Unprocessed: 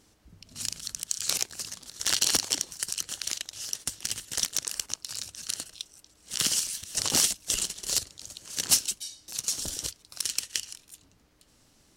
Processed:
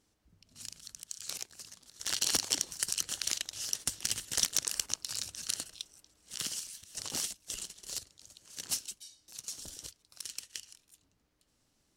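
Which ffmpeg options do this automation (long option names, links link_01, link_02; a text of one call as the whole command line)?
ffmpeg -i in.wav -af "volume=-1dB,afade=type=in:start_time=1.9:duration=0.88:silence=0.281838,afade=type=out:start_time=5.35:duration=1.18:silence=0.281838" out.wav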